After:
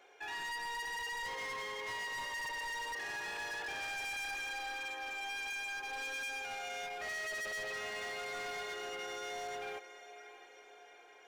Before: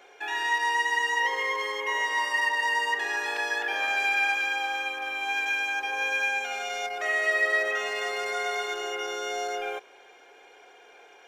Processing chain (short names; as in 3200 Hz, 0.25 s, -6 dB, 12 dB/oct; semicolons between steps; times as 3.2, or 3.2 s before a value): diffused feedback echo 0.646 s, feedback 53%, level -15 dB; overloaded stage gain 30 dB; gain -8.5 dB